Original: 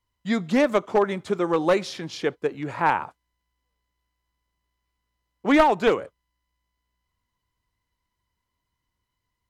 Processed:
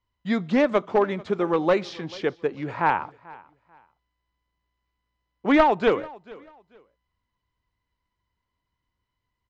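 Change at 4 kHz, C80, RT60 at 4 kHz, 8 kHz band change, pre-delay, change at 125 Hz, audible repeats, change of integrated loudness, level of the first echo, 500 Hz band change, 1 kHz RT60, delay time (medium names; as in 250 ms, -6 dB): -2.5 dB, no reverb, no reverb, no reading, no reverb, 0.0 dB, 2, -0.5 dB, -22.0 dB, 0.0 dB, no reverb, 440 ms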